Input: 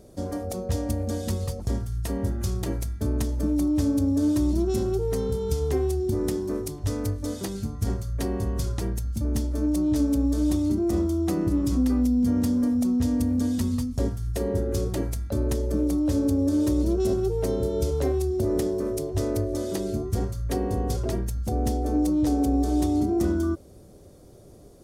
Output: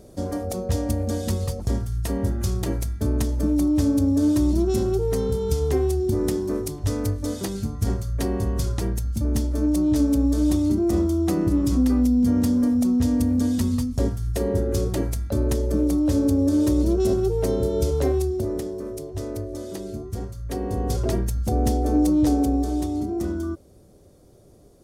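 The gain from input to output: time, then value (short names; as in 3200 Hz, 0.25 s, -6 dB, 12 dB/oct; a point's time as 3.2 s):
18.19 s +3 dB
18.64 s -4.5 dB
20.35 s -4.5 dB
21.05 s +4 dB
22.26 s +4 dB
22.89 s -3 dB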